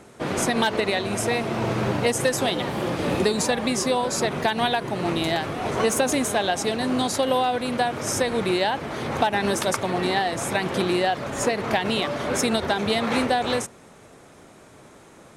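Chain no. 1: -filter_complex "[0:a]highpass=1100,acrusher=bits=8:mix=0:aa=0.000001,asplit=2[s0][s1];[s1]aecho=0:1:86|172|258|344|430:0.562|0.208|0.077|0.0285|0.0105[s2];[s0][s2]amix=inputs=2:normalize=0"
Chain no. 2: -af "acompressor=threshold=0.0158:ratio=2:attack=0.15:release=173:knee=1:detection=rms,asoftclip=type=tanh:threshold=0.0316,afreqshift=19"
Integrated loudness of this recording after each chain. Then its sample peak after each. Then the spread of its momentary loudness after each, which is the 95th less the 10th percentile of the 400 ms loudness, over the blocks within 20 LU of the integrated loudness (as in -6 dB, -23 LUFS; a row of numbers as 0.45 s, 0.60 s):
-27.0 LUFS, -36.5 LUFS; -10.0 dBFS, -23.5 dBFS; 5 LU, 5 LU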